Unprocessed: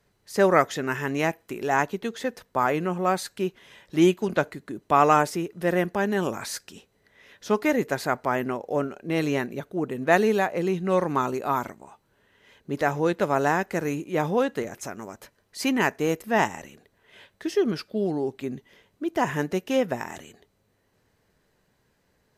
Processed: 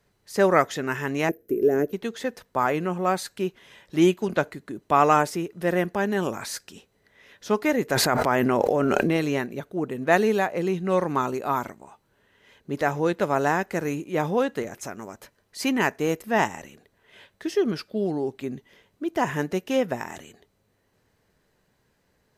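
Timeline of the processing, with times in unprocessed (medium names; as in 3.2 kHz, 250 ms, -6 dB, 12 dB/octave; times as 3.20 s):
1.29–1.93 s: FFT filter 170 Hz 0 dB, 420 Hz +12 dB, 620 Hz -2 dB, 920 Hz -23 dB, 1.6 kHz -10 dB, 2.3 kHz -15 dB, 4.1 kHz -17 dB, 5.8 kHz -10 dB, 8.3 kHz -13 dB, 13 kHz +6 dB
7.90–9.17 s: level flattener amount 100%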